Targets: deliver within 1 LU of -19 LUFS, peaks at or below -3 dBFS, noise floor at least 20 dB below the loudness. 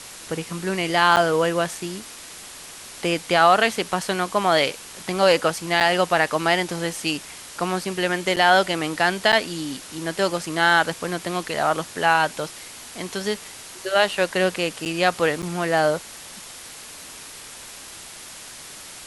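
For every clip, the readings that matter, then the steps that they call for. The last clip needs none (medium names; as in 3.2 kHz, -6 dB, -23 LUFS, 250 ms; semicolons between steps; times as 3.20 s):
dropouts 6; longest dropout 7.9 ms; noise floor -40 dBFS; noise floor target -42 dBFS; loudness -21.5 LUFS; peak level -3.0 dBFS; loudness target -19.0 LUFS
-> interpolate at 1.16/5.80/8.36/9.32/14.85/15.42 s, 7.9 ms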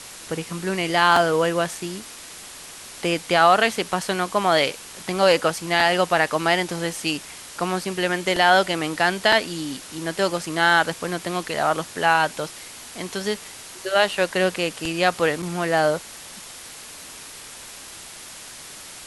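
dropouts 0; noise floor -40 dBFS; noise floor target -42 dBFS
-> noise reduction 6 dB, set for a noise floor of -40 dBFS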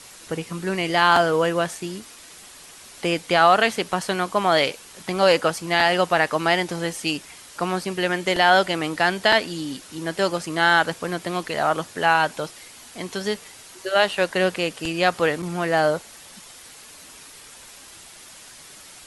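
noise floor -45 dBFS; loudness -21.5 LUFS; peak level -3.0 dBFS; loudness target -19.0 LUFS
-> trim +2.5 dB; peak limiter -3 dBFS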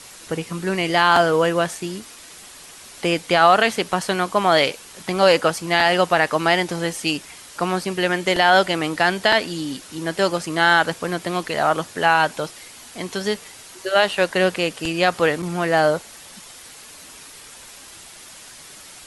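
loudness -19.5 LUFS; peak level -3.0 dBFS; noise floor -42 dBFS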